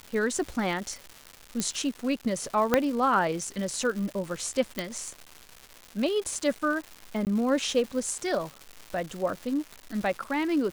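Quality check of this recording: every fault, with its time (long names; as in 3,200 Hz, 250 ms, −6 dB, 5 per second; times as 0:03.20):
surface crackle 350 per second −34 dBFS
0:01.60: click −13 dBFS
0:02.74: click −7 dBFS
0:04.79: click −13 dBFS
0:07.25–0:07.27: drop-out 18 ms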